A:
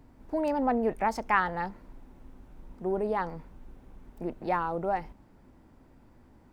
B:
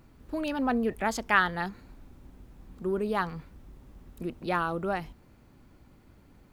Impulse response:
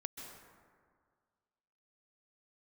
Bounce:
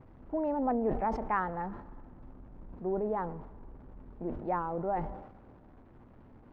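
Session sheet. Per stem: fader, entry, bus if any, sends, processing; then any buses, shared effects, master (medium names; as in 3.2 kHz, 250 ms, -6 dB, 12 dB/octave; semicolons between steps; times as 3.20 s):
-4.0 dB, 0.00 s, send -15 dB, none
-19.5 dB, 0.00 s, no send, one-bit comparator; flange 0.51 Hz, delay 8.2 ms, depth 1.9 ms, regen -69%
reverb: on, RT60 1.9 s, pre-delay 122 ms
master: low-pass 1.2 kHz 12 dB/octave; decay stretcher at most 66 dB/s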